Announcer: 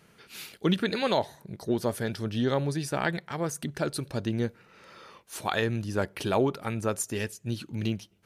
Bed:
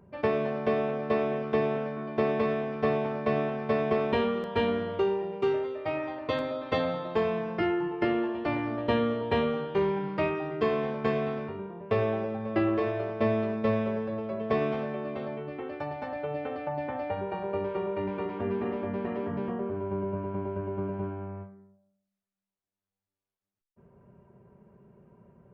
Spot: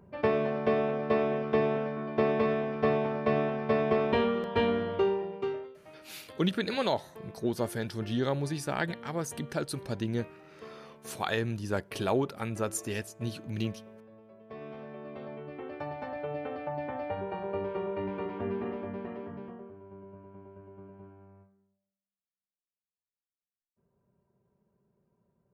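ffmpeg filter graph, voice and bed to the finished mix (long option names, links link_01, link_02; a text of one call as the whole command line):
ffmpeg -i stem1.wav -i stem2.wav -filter_complex "[0:a]adelay=5750,volume=-3dB[link_01];[1:a]volume=18.5dB,afade=type=out:start_time=5.05:duration=0.75:silence=0.0891251,afade=type=in:start_time=14.47:duration=1.41:silence=0.11885,afade=type=out:start_time=18.43:duration=1.34:silence=0.188365[link_02];[link_01][link_02]amix=inputs=2:normalize=0" out.wav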